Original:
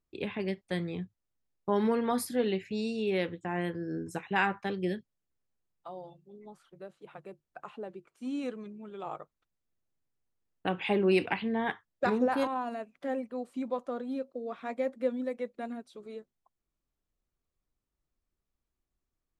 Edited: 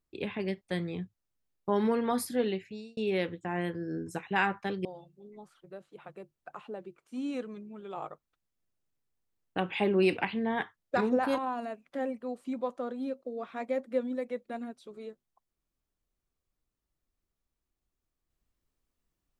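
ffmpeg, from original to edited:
-filter_complex "[0:a]asplit=3[a][b][c];[a]atrim=end=2.97,asetpts=PTS-STARTPTS,afade=t=out:st=2.42:d=0.55[d];[b]atrim=start=2.97:end=4.852,asetpts=PTS-STARTPTS,afade=t=in:d=0.004:c=hsin[e];[c]atrim=start=5.938[f];[d][e]concat=n=2:v=0:a=1[g];[g][f]acrossfade=d=0.004:c1=hsin:c2=hsin"

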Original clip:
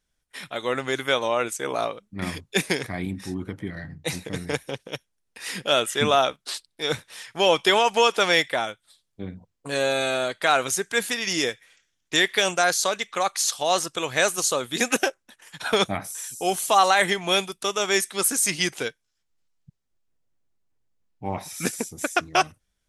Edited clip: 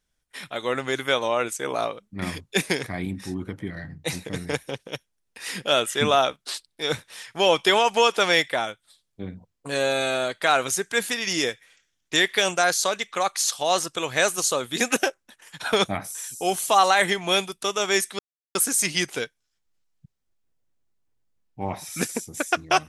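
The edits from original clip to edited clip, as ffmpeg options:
-filter_complex "[0:a]asplit=2[a][b];[a]atrim=end=18.19,asetpts=PTS-STARTPTS,afade=t=out:st=18.186:d=0.004:c=hsin,apad=pad_dur=0.36[c];[b]atrim=start=18.19,asetpts=PTS-STARTPTS,afade=t=in:d=0.004:c=hsin[d];[c][d]concat=n=2:v=0:a=1"

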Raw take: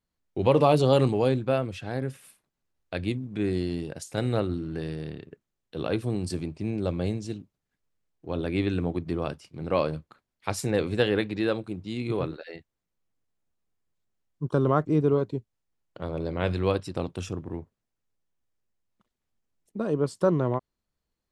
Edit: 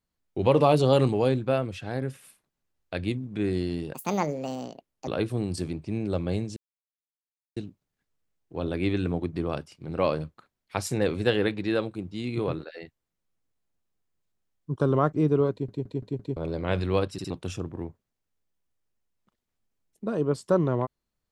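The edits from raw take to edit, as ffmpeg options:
-filter_complex "[0:a]asplit=12[a][b][c][d][e][f][g][h][i][j][k][l];[a]atrim=end=3.944[m];[b]atrim=start=3.94:end=5.8,asetpts=PTS-STARTPTS,asetrate=72324,aresample=44100[n];[c]atrim=start=5.796:end=7.29,asetpts=PTS-STARTPTS,afade=t=out:st=1.49:d=0.004:c=hsin,apad=pad_dur=1[o];[d]atrim=start=7.29:end=15.412,asetpts=PTS-STARTPTS,afade=t=in:d=0.004:c=hsin[p];[e]atrim=start=15.238:end=15.412[q];[f]atrim=start=15.238:end=15.412[r];[g]atrim=start=15.238:end=15.412[s];[h]atrim=start=15.238:end=15.412[t];[i]atrim=start=16.088:end=16.912[u];[j]atrim=start=16.848:end=16.912[v];[k]atrim=start=16.848:end=16.912[w];[l]atrim=start=17.028[x];[m][n]acrossfade=d=0.004:c1=hsin:c2=hsin[y];[o][p]concat=n=2:v=0:a=1[z];[y][z]acrossfade=d=0.004:c1=hsin:c2=hsin[aa];[aa][q]acrossfade=d=0.004:c1=hsin:c2=hsin[ab];[ab][r]acrossfade=d=0.004:c1=hsin:c2=hsin[ac];[ac][s]acrossfade=d=0.004:c1=hsin:c2=hsin[ad];[ad][t]acrossfade=d=0.004:c1=hsin:c2=hsin[ae];[ae][u]acrossfade=d=0.004:c1=hsin:c2=hsin[af];[af][v]acrossfade=d=0.004:c1=hsin:c2=hsin[ag];[ag][w]acrossfade=d=0.004:c1=hsin:c2=hsin[ah];[ah][x]acrossfade=d=0.004:c1=hsin:c2=hsin"

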